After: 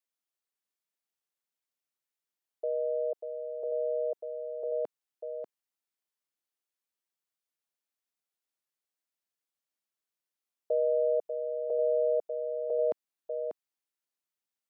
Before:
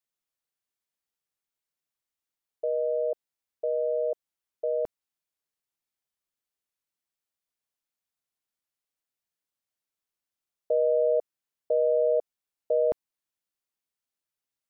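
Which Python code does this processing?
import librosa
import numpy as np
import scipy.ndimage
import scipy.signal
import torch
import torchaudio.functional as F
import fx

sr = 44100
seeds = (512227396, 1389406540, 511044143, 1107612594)

y = scipy.signal.sosfilt(scipy.signal.butter(2, 210.0, 'highpass', fs=sr, output='sos'), x)
y = y + 10.0 ** (-7.0 / 20.0) * np.pad(y, (int(591 * sr / 1000.0), 0))[:len(y)]
y = y * librosa.db_to_amplitude(-3.5)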